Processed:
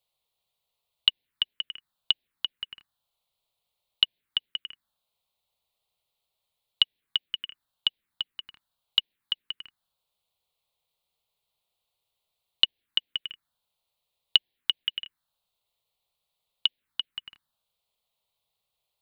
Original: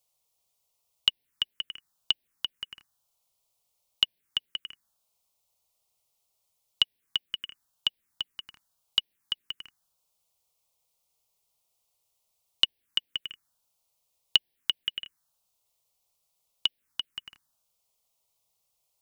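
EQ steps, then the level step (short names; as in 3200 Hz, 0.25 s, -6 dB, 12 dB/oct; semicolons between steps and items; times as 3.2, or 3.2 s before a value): resonant high shelf 4700 Hz -6.5 dB, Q 3; -1.5 dB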